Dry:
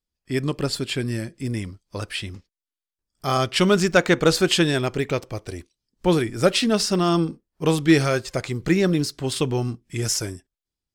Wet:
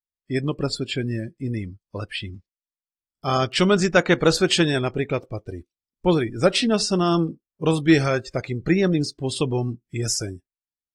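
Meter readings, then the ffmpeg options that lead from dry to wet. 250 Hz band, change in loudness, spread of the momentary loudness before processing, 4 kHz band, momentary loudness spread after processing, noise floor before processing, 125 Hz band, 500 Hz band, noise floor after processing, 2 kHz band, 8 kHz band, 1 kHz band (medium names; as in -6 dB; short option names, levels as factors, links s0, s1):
0.0 dB, 0.0 dB, 13 LU, -0.5 dB, 13 LU, under -85 dBFS, 0.0 dB, 0.0 dB, under -85 dBFS, -0.5 dB, -1.5 dB, 0.0 dB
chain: -af "afftdn=nr=20:nf=-34" -ar 44100 -c:a aac -b:a 48k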